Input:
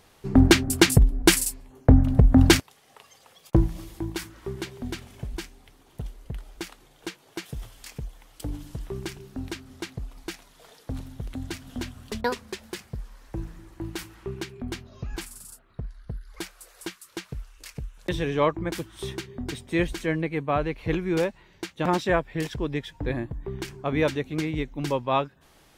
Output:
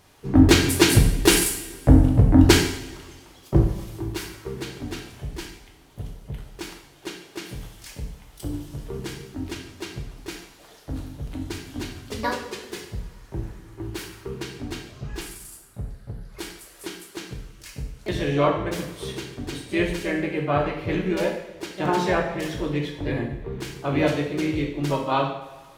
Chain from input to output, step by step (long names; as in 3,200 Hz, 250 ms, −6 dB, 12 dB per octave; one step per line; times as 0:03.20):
pitch-shifted copies added +3 semitones −8 dB
coupled-rooms reverb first 0.68 s, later 2 s, from −16 dB, DRR 0 dB
level −1.5 dB